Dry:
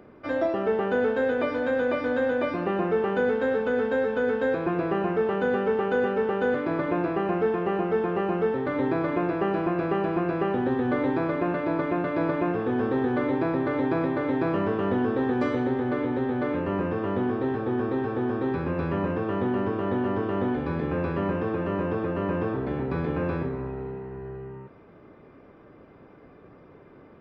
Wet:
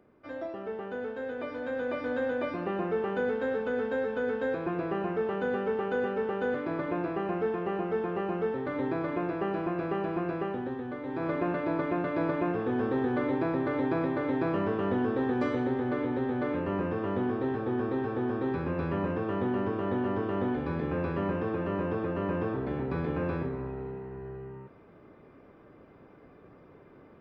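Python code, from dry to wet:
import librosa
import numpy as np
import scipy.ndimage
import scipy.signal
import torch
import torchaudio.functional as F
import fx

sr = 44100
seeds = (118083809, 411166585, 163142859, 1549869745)

y = fx.gain(x, sr, db=fx.line((1.19, -12.0), (2.12, -5.5), (10.33, -5.5), (11.02, -13.5), (11.29, -3.5)))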